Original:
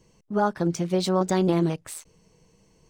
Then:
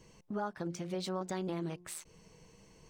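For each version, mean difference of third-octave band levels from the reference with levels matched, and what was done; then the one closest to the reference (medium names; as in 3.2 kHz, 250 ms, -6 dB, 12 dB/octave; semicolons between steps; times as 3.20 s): 4.5 dB: peaking EQ 1.9 kHz +4 dB 2.3 oct; de-hum 177.2 Hz, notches 6; compression 2.5:1, threshold -42 dBFS, peak gain reduction 16.5 dB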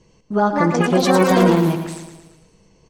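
7.0 dB: low-pass 6.1 kHz 12 dB/octave; ever faster or slower copies 312 ms, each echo +6 st, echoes 3; feedback delay 113 ms, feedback 53%, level -8.5 dB; trim +5.5 dB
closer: first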